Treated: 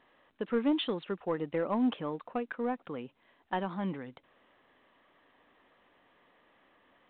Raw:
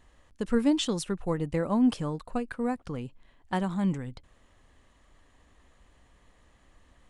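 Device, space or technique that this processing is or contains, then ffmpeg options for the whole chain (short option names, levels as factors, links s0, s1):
telephone: -af "highpass=290,lowpass=3600,asoftclip=type=tanh:threshold=0.106" -ar 8000 -c:a pcm_mulaw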